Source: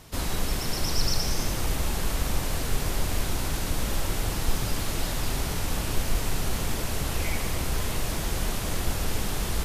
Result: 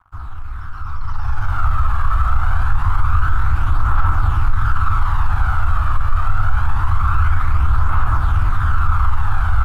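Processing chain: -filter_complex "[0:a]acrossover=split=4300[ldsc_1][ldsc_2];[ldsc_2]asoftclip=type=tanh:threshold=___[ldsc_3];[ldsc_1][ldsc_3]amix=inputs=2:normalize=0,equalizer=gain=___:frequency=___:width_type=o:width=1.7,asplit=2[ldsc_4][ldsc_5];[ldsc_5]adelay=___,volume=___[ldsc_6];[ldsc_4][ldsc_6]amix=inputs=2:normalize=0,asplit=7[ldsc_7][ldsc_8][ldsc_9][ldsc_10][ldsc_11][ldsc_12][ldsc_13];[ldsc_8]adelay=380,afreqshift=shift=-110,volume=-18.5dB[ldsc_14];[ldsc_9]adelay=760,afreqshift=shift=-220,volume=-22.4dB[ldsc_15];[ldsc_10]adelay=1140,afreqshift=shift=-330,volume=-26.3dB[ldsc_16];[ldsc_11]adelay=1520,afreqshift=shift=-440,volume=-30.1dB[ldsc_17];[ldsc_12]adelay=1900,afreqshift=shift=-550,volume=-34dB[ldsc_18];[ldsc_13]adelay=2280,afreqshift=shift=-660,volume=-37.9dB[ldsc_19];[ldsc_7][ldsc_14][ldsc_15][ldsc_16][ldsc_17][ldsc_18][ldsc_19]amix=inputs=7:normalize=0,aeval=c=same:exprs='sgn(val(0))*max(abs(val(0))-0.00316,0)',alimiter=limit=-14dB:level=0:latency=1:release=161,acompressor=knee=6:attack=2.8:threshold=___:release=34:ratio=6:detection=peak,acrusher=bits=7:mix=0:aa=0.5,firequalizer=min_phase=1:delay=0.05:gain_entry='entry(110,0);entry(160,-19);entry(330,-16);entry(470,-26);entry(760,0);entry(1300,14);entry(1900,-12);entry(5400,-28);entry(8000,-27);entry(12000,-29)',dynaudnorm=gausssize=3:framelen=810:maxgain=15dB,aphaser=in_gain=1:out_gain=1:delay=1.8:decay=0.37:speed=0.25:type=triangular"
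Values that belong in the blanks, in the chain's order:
-39dB, -7.5, 850, 13, -7dB, -27dB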